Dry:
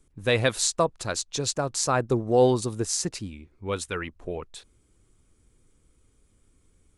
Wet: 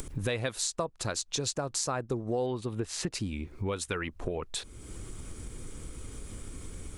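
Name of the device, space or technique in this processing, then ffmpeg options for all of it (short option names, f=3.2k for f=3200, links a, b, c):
upward and downward compression: -filter_complex "[0:a]asettb=1/sr,asplit=3[a][b][c];[a]atrim=end=2.464[d];[b]atrim=start=2.46:end=3.12,asetpts=PTS-STARTPTS,afade=t=in:d=0.004:c=qsin,afade=t=out:st=0.656:d=0.004:c=qsin,highshelf=f=4.2k:t=q:w=1.5:g=-10.5[e];[c]atrim=start=3.116[f];[d][e]acrossfade=d=0.004:c1=hsin:c2=qsin[g];[g][f]acrossfade=d=0.004:c1=qsin:c2=hsin,acompressor=mode=upward:threshold=-24dB:ratio=2.5,acompressor=threshold=-30dB:ratio=5,volume=1dB"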